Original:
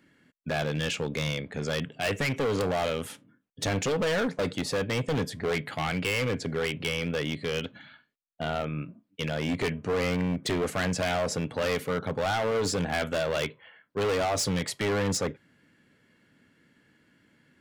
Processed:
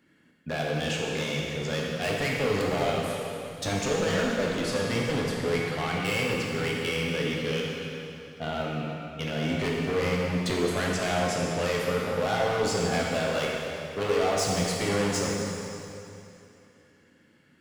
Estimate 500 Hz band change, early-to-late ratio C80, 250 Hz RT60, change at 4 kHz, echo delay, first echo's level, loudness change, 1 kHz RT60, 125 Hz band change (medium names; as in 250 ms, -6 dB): +1.5 dB, 0.5 dB, 2.9 s, +1.5 dB, no echo, no echo, +1.0 dB, 2.8 s, +0.5 dB